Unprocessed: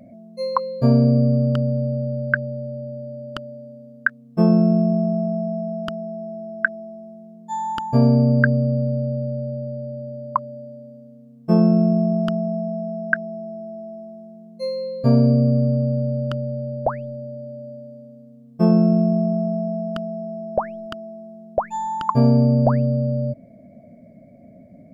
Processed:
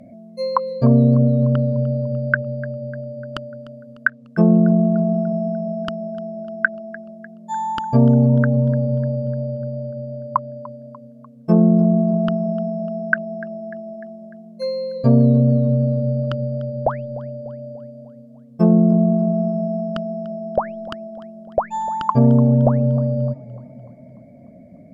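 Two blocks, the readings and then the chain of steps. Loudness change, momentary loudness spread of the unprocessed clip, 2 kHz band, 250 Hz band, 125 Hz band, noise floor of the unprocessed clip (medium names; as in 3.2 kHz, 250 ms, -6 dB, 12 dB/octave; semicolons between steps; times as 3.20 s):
+2.0 dB, 19 LU, +1.0 dB, +2.0 dB, +2.5 dB, -46 dBFS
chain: low-pass that closes with the level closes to 750 Hz, closed at -11.5 dBFS; modulated delay 297 ms, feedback 55%, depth 84 cents, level -19.5 dB; trim +2 dB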